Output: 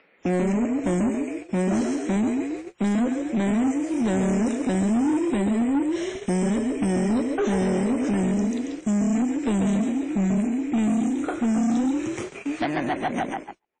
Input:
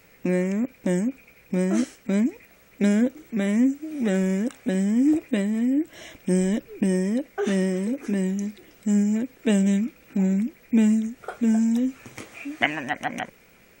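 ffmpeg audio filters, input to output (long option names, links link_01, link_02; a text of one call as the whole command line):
ffmpeg -i in.wav -filter_complex "[0:a]asettb=1/sr,asplit=3[link_01][link_02][link_03];[link_01]atrim=end=3.614[link_04];[link_02]atrim=start=3.61:end=4.95,asetpts=PTS-STARTPTS,afade=type=in:duration=0.004:curve=qsin,afade=type=out:start_time=1.336:duration=0.004:curve=qsin,highshelf=frequency=7700:gain=9.5[link_05];[link_03]atrim=start=4.946[link_06];[link_04][link_05]acrossfade=duration=0.004:curve1=hsin:curve2=qsin[link_07];[link_07][link_06]acrossfade=duration=0.004:curve1=qsin:curve2=hsin,acrossover=split=1400|7100[link_08][link_09][link_10];[link_08]acompressor=threshold=-23dB:ratio=4[link_11];[link_09]acompressor=threshold=-45dB:ratio=4[link_12];[link_10]acompressor=threshold=-50dB:ratio=4[link_13];[link_11][link_12][link_13]amix=inputs=3:normalize=0,asplit=7[link_14][link_15][link_16][link_17][link_18][link_19][link_20];[link_15]adelay=138,afreqshift=36,volume=-6dB[link_21];[link_16]adelay=276,afreqshift=72,volume=-11.7dB[link_22];[link_17]adelay=414,afreqshift=108,volume=-17.4dB[link_23];[link_18]adelay=552,afreqshift=144,volume=-23dB[link_24];[link_19]adelay=690,afreqshift=180,volume=-28.7dB[link_25];[link_20]adelay=828,afreqshift=216,volume=-34.4dB[link_26];[link_14][link_21][link_22][link_23][link_24][link_25][link_26]amix=inputs=7:normalize=0,agate=range=-47dB:threshold=-39dB:ratio=16:detection=peak,asettb=1/sr,asplit=3[link_27][link_28][link_29];[link_27]atrim=end=1.084[link_30];[link_28]atrim=start=1.08:end=2.16,asetpts=PTS-STARTPTS,afade=type=in:duration=0.004:curve=qsin,afade=type=out:start_time=1.076:duration=0.004:curve=qsin,highpass=frequency=91:poles=1[link_31];[link_29]atrim=start=2.156[link_32];[link_30][link_31]acrossfade=duration=0.004:curve1=hsin:curve2=qsin[link_33];[link_33][link_32]acrossfade=duration=0.004:curve1=qsin:curve2=hsin,acrossover=split=210|3600[link_34][link_35][link_36];[link_35]acompressor=mode=upward:threshold=-39dB:ratio=2.5[link_37];[link_34][link_37][link_36]amix=inputs=3:normalize=0,asoftclip=type=tanh:threshold=-25.5dB,volume=7dB" -ar 22050 -c:a wmav2 -b:a 32k out.wma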